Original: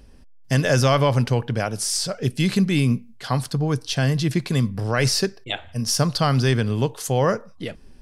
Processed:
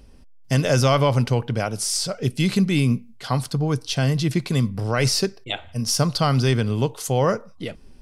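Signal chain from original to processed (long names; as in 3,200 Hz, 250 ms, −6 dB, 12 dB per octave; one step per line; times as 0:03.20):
notch filter 1,700 Hz, Q 9.9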